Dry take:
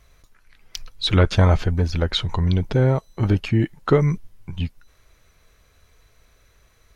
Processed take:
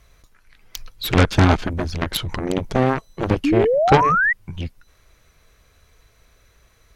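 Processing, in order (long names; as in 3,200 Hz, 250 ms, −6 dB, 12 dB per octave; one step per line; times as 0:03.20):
harmonic generator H 7 −10 dB, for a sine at −4 dBFS
sound drawn into the spectrogram rise, 0:03.44–0:04.33, 270–2,000 Hz −17 dBFS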